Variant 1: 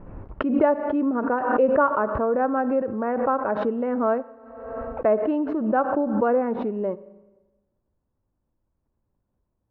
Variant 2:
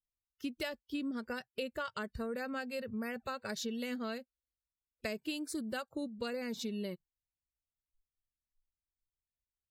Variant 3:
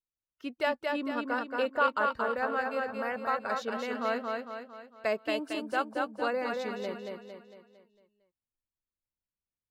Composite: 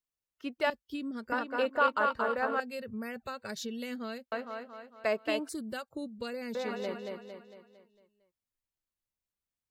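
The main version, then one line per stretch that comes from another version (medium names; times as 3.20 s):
3
0.70–1.32 s: from 2
2.60–4.32 s: from 2
5.49–6.55 s: from 2
not used: 1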